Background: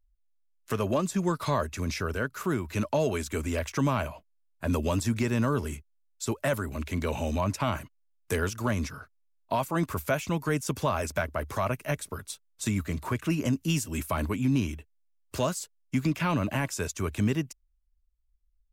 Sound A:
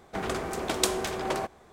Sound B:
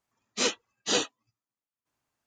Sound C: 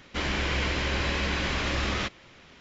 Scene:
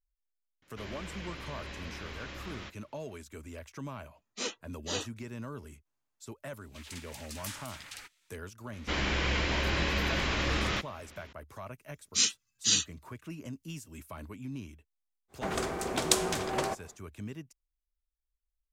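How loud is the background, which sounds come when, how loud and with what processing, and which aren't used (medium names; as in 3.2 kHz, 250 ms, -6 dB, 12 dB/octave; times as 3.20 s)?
background -15 dB
0.62 s: add C -15.5 dB
4.00 s: add B -9 dB
6.61 s: add A -4 dB + spectral gate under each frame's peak -20 dB weak
8.73 s: add C -2 dB
11.78 s: add B -1.5 dB + FFT filter 150 Hz 0 dB, 340 Hz -14 dB, 650 Hz -26 dB, 1.4 kHz -8 dB, 5.3 kHz +6 dB
15.28 s: add A -2 dB, fades 0.10 s + dynamic bell 7 kHz, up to +4 dB, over -45 dBFS, Q 0.73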